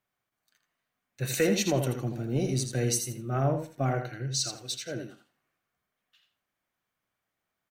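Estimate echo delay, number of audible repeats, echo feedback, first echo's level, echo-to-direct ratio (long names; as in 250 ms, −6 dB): 82 ms, 2, 16%, −7.5 dB, −7.5 dB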